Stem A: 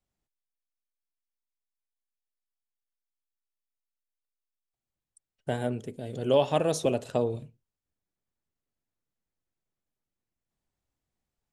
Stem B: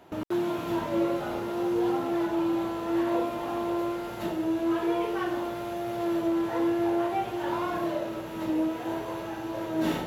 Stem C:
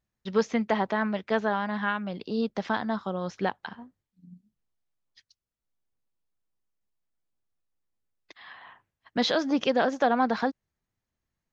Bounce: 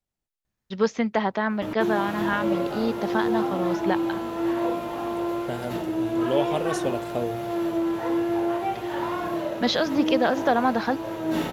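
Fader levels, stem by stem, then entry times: −2.0, +1.5, +2.0 decibels; 0.00, 1.50, 0.45 seconds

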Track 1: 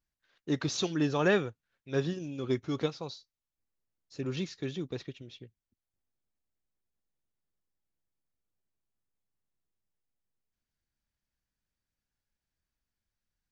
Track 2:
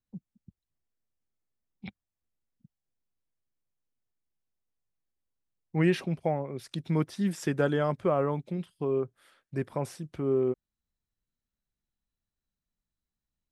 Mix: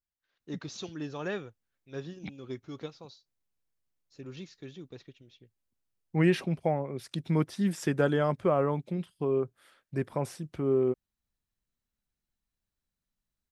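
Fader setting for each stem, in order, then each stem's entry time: −9.0, +0.5 decibels; 0.00, 0.40 seconds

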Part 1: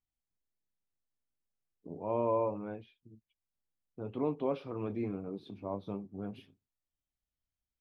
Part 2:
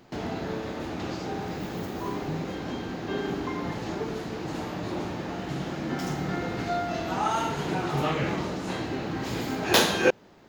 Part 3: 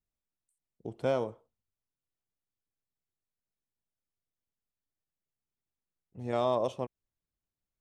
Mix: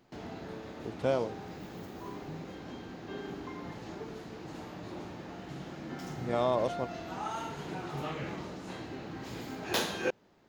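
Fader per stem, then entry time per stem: muted, −10.5 dB, 0.0 dB; muted, 0.00 s, 0.00 s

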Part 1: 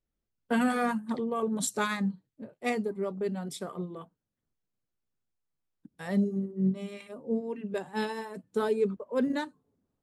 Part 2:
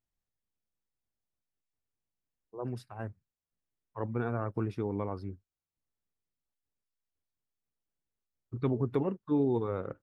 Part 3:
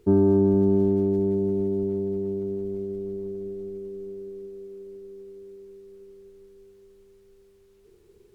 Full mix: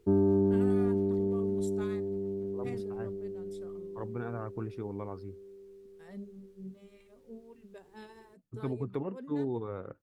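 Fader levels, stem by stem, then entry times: −18.0, −5.0, −6.5 decibels; 0.00, 0.00, 0.00 seconds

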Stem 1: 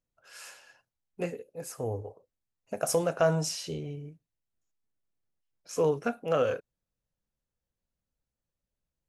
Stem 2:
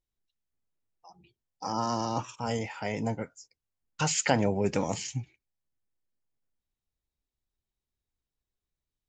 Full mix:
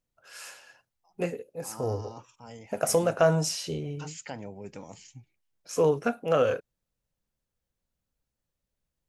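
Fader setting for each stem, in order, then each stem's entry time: +3.0, −14.5 decibels; 0.00, 0.00 seconds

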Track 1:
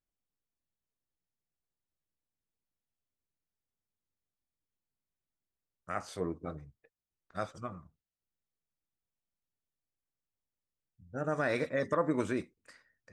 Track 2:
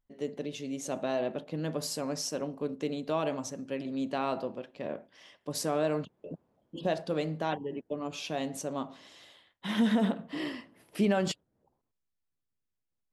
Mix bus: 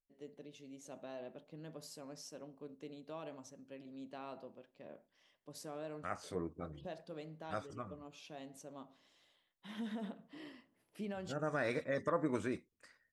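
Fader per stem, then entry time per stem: −5.0, −16.5 decibels; 0.15, 0.00 seconds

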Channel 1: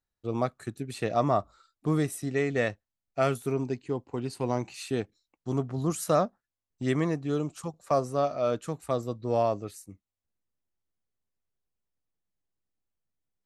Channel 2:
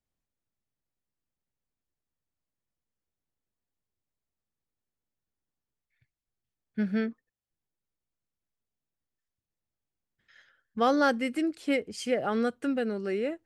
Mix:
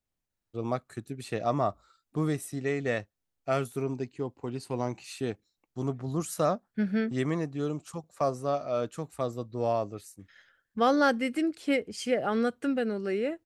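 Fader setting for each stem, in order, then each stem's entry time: −2.5, +0.5 decibels; 0.30, 0.00 seconds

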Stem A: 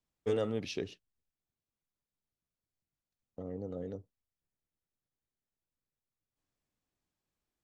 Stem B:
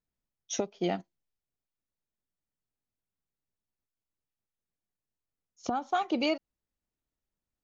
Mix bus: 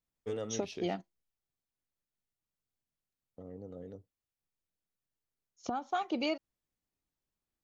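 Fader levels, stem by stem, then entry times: −6.0, −4.5 decibels; 0.00, 0.00 seconds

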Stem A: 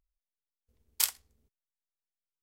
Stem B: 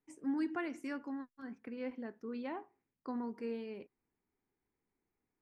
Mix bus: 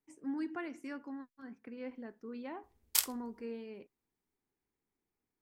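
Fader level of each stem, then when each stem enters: −2.0, −2.5 decibels; 1.95, 0.00 seconds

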